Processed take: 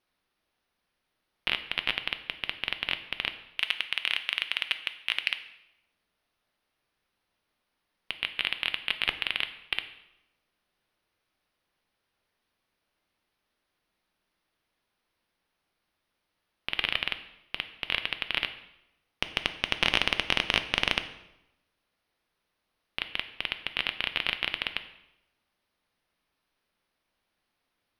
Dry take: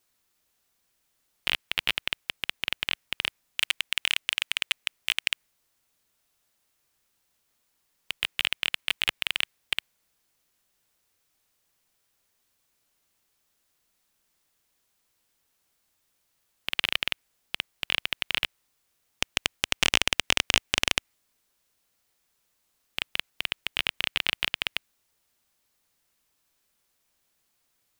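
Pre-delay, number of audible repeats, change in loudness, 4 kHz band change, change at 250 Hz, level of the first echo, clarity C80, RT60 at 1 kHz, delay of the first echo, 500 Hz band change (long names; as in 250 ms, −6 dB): 3 ms, no echo audible, −2.0 dB, −2.0 dB, +0.5 dB, no echo audible, 14.5 dB, 0.85 s, no echo audible, +0.5 dB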